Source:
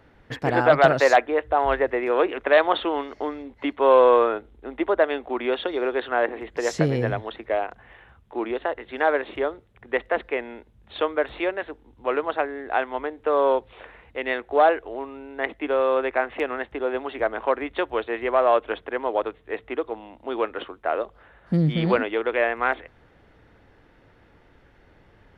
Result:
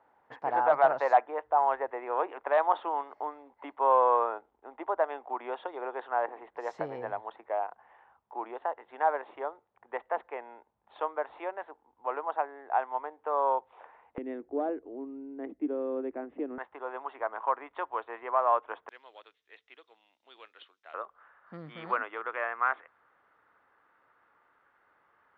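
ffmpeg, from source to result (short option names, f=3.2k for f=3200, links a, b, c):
-af "asetnsamples=n=441:p=0,asendcmd='14.18 bandpass f 280;16.58 bandpass f 1000;18.89 bandpass f 5500;20.94 bandpass f 1200',bandpass=f=890:t=q:w=3.2:csg=0"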